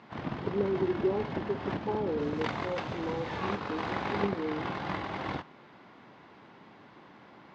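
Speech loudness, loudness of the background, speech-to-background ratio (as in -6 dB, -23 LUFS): -35.0 LUFS, -36.0 LUFS, 1.0 dB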